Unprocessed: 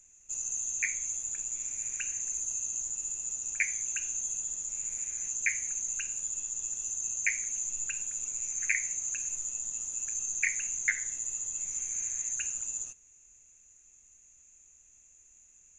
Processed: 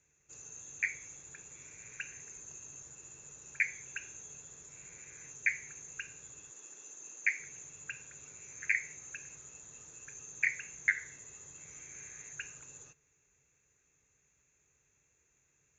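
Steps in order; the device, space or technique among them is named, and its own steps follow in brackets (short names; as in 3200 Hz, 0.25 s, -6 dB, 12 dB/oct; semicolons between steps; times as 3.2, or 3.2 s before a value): guitar cabinet (speaker cabinet 78–4500 Hz, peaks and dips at 140 Hz +8 dB, 220 Hz -7 dB, 430 Hz +6 dB, 700 Hz -4 dB, 1600 Hz +3 dB, 3000 Hz -8 dB); 6.52–7.4 HPF 230 Hz 24 dB/oct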